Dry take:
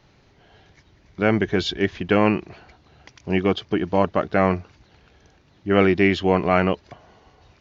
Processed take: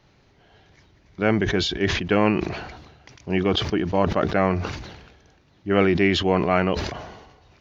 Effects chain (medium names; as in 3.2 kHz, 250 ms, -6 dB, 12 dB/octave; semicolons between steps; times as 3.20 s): decay stretcher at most 49 dB/s; trim -2 dB